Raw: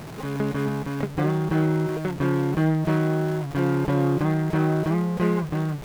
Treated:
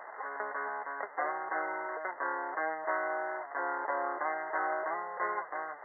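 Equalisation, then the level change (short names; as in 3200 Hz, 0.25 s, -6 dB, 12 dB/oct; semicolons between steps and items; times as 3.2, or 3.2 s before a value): HPF 660 Hz 24 dB/oct; brick-wall FIR low-pass 2100 Hz; 0.0 dB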